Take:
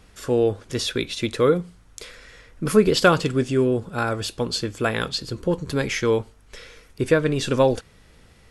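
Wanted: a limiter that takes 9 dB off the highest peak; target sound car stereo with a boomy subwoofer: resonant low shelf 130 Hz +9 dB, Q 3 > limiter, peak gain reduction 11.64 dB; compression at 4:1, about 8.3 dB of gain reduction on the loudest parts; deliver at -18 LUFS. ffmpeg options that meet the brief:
-af "acompressor=threshold=-20dB:ratio=4,alimiter=limit=-19dB:level=0:latency=1,lowshelf=f=130:t=q:w=3:g=9,volume=15.5dB,alimiter=limit=-9dB:level=0:latency=1"

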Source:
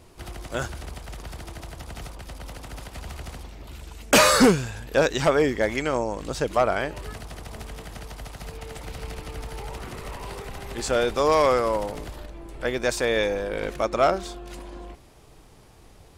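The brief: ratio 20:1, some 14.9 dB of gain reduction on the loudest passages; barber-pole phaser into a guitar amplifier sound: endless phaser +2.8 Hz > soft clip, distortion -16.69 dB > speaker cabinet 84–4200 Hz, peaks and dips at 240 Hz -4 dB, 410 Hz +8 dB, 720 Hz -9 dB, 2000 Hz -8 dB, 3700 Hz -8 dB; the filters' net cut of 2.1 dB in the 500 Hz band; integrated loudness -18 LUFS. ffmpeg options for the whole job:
-filter_complex "[0:a]equalizer=f=500:t=o:g=-4.5,acompressor=threshold=-28dB:ratio=20,asplit=2[a][b];[b]afreqshift=2.8[c];[a][c]amix=inputs=2:normalize=1,asoftclip=threshold=-28.5dB,highpass=84,equalizer=f=240:t=q:w=4:g=-4,equalizer=f=410:t=q:w=4:g=8,equalizer=f=720:t=q:w=4:g=-9,equalizer=f=2k:t=q:w=4:g=-8,equalizer=f=3.7k:t=q:w=4:g=-8,lowpass=f=4.2k:w=0.5412,lowpass=f=4.2k:w=1.3066,volume=23.5dB"

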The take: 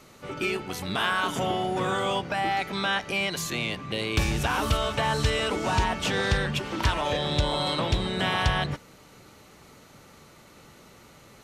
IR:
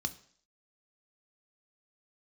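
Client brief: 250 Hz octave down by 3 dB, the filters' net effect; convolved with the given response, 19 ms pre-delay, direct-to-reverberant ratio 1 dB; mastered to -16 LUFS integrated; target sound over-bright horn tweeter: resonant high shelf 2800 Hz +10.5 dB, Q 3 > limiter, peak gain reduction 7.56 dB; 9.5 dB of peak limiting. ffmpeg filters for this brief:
-filter_complex "[0:a]equalizer=f=250:t=o:g=-4.5,alimiter=limit=-23dB:level=0:latency=1,asplit=2[a][b];[1:a]atrim=start_sample=2205,adelay=19[c];[b][c]afir=irnorm=-1:irlink=0,volume=-3dB[d];[a][d]amix=inputs=2:normalize=0,highshelf=f=2.8k:t=q:w=3:g=10.5,volume=6.5dB,alimiter=limit=-7.5dB:level=0:latency=1"

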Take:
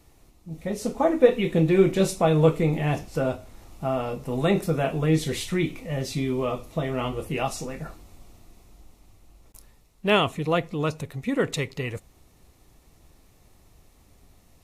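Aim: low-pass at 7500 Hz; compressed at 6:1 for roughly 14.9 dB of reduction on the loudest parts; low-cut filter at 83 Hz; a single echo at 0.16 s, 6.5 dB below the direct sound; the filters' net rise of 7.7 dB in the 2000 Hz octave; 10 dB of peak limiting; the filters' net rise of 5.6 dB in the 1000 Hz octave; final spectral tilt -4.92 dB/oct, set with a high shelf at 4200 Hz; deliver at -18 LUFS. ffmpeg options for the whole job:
-af "highpass=83,lowpass=7.5k,equalizer=f=1k:t=o:g=5.5,equalizer=f=2k:t=o:g=7,highshelf=f=4.2k:g=5.5,acompressor=threshold=-26dB:ratio=6,alimiter=limit=-23dB:level=0:latency=1,aecho=1:1:160:0.473,volume=15dB"

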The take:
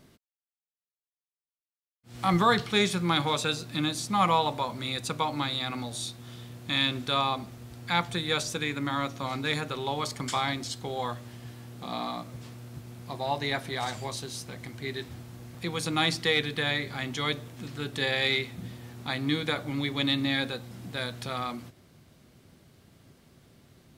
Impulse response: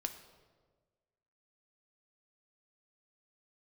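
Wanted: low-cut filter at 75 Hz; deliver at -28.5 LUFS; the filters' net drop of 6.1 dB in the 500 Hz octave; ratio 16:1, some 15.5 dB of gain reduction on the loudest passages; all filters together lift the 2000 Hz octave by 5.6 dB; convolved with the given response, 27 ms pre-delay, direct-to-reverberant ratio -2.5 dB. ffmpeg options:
-filter_complex "[0:a]highpass=75,equalizer=f=500:t=o:g=-8,equalizer=f=2k:t=o:g=7,acompressor=threshold=-33dB:ratio=16,asplit=2[a][b];[1:a]atrim=start_sample=2205,adelay=27[c];[b][c]afir=irnorm=-1:irlink=0,volume=3dB[d];[a][d]amix=inputs=2:normalize=0,volume=5dB"

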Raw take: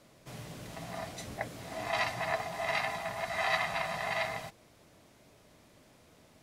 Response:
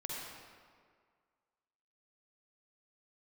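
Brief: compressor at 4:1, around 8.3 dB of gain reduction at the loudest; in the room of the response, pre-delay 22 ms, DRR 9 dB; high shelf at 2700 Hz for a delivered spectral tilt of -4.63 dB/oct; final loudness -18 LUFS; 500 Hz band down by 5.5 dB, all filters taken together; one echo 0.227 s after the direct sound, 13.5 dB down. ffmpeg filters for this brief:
-filter_complex "[0:a]equalizer=f=500:t=o:g=-8,highshelf=f=2.7k:g=-9,acompressor=threshold=-40dB:ratio=4,aecho=1:1:227:0.211,asplit=2[a][b];[1:a]atrim=start_sample=2205,adelay=22[c];[b][c]afir=irnorm=-1:irlink=0,volume=-10dB[d];[a][d]amix=inputs=2:normalize=0,volume=25dB"

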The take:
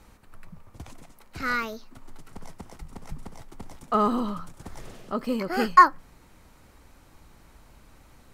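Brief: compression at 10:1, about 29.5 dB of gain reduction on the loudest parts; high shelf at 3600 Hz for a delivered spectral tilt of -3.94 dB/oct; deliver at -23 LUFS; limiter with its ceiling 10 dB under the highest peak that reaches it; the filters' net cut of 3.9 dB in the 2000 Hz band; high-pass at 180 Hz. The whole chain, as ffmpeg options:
-af "highpass=180,equalizer=f=2k:t=o:g=-7,highshelf=f=3.6k:g=6.5,acompressor=threshold=-41dB:ratio=10,volume=27dB,alimiter=limit=-9.5dB:level=0:latency=1"

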